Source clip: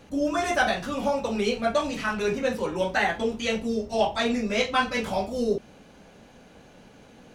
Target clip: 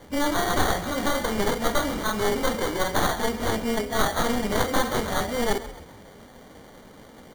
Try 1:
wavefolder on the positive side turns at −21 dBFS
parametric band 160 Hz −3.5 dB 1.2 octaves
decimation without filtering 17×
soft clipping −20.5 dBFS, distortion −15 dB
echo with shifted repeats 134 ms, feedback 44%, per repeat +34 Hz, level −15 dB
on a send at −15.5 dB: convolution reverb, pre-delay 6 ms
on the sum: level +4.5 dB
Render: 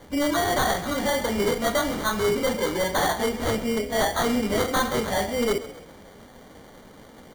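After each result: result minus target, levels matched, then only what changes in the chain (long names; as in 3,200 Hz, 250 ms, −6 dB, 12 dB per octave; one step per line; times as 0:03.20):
wavefolder on the positive side: distortion −11 dB; soft clipping: distortion +9 dB
change: wavefolder on the positive side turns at −29 dBFS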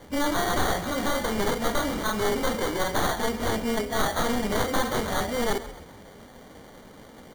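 soft clipping: distortion +11 dB
change: soft clipping −13 dBFS, distortion −25 dB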